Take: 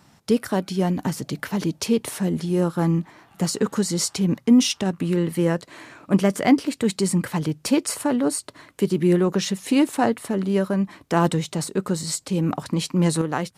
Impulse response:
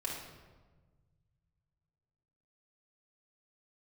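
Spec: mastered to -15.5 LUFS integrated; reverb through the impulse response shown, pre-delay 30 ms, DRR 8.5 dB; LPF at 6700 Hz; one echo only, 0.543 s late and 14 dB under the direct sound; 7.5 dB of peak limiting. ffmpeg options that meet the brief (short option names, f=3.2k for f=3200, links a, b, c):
-filter_complex "[0:a]lowpass=6.7k,alimiter=limit=-13dB:level=0:latency=1,aecho=1:1:543:0.2,asplit=2[a][b];[1:a]atrim=start_sample=2205,adelay=30[c];[b][c]afir=irnorm=-1:irlink=0,volume=-10.5dB[d];[a][d]amix=inputs=2:normalize=0,volume=8.5dB"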